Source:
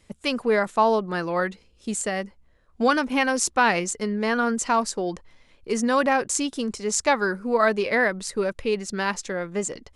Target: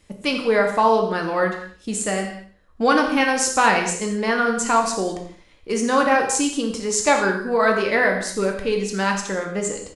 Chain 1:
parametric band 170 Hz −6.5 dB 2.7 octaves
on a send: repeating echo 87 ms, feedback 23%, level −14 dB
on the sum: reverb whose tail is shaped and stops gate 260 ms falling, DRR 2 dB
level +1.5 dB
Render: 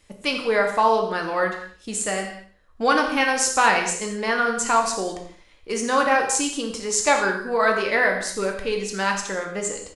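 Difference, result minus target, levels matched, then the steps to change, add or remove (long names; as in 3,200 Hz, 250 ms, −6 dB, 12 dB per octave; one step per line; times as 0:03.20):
125 Hz band −5.0 dB
remove: parametric band 170 Hz −6.5 dB 2.7 octaves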